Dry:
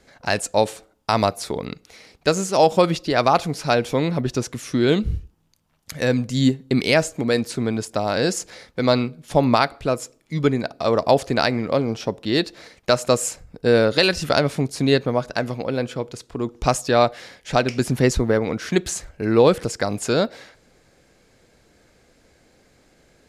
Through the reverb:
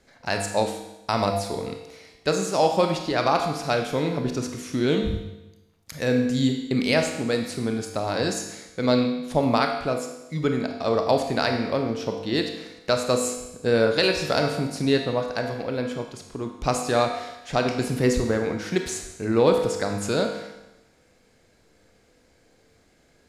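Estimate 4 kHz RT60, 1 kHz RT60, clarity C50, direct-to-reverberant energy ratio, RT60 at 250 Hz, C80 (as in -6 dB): 1.0 s, 1.0 s, 5.5 dB, 3.5 dB, 1.0 s, 8.0 dB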